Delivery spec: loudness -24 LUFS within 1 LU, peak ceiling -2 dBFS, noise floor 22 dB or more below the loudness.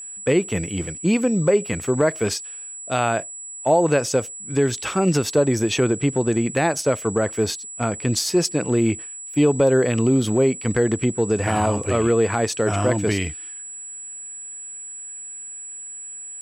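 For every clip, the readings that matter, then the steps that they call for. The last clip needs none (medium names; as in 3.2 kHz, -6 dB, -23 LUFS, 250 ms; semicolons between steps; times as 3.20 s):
steady tone 7.8 kHz; tone level -33 dBFS; loudness -21.0 LUFS; peak level -6.5 dBFS; loudness target -24.0 LUFS
-> band-stop 7.8 kHz, Q 30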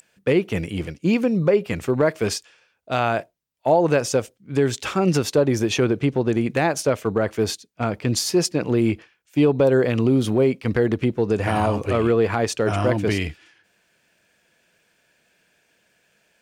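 steady tone not found; loudness -21.5 LUFS; peak level -7.0 dBFS; loudness target -24.0 LUFS
-> trim -2.5 dB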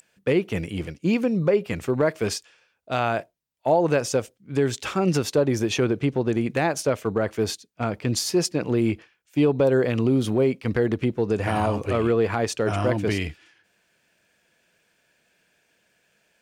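loudness -24.0 LUFS; peak level -9.5 dBFS; noise floor -68 dBFS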